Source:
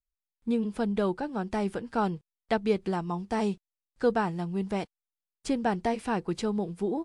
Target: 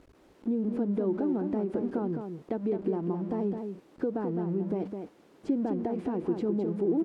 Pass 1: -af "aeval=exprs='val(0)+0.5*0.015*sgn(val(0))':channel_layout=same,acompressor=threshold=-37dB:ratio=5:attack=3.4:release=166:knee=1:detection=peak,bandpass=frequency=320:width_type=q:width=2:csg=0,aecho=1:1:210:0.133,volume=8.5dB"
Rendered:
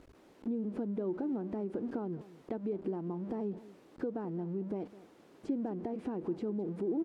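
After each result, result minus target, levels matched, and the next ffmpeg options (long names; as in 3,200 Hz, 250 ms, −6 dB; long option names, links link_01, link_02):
echo-to-direct −11 dB; downward compressor: peak gain reduction +6 dB
-af "aeval=exprs='val(0)+0.5*0.015*sgn(val(0))':channel_layout=same,acompressor=threshold=-37dB:ratio=5:attack=3.4:release=166:knee=1:detection=peak,bandpass=frequency=320:width_type=q:width=2:csg=0,aecho=1:1:210:0.473,volume=8.5dB"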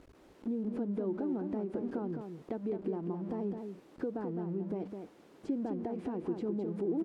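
downward compressor: peak gain reduction +6 dB
-af "aeval=exprs='val(0)+0.5*0.015*sgn(val(0))':channel_layout=same,acompressor=threshold=-29.5dB:ratio=5:attack=3.4:release=166:knee=1:detection=peak,bandpass=frequency=320:width_type=q:width=2:csg=0,aecho=1:1:210:0.473,volume=8.5dB"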